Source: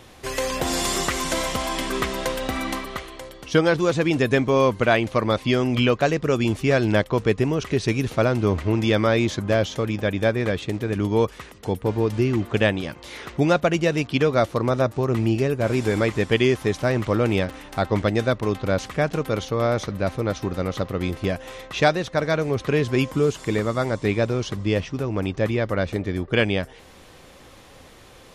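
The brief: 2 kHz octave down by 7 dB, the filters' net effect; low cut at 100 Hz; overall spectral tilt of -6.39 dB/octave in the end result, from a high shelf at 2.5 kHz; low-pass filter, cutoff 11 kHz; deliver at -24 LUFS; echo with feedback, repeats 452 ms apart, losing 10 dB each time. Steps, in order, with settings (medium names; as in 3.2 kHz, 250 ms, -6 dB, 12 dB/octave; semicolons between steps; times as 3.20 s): high-pass 100 Hz; low-pass 11 kHz; peaking EQ 2 kHz -6.5 dB; treble shelf 2.5 kHz -6 dB; feedback delay 452 ms, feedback 32%, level -10 dB; trim -0.5 dB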